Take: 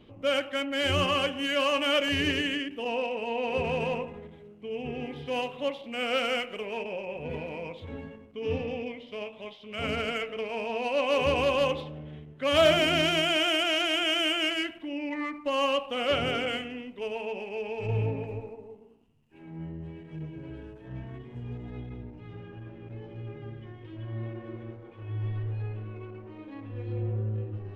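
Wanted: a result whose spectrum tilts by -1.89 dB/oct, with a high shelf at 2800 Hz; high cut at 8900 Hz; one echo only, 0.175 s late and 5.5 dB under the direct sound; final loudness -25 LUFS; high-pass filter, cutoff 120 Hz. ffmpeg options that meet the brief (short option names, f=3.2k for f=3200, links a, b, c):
-af "highpass=120,lowpass=8.9k,highshelf=f=2.8k:g=3,aecho=1:1:175:0.531,volume=2dB"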